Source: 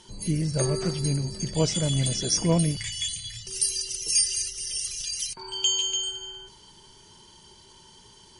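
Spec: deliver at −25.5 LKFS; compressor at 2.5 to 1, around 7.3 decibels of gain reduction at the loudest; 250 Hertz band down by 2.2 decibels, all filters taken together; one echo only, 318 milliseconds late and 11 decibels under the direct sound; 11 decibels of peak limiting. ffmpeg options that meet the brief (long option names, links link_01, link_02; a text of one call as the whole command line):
ffmpeg -i in.wav -af "equalizer=frequency=250:width_type=o:gain=-4.5,acompressor=threshold=-30dB:ratio=2.5,alimiter=level_in=3dB:limit=-24dB:level=0:latency=1,volume=-3dB,aecho=1:1:318:0.282,volume=8.5dB" out.wav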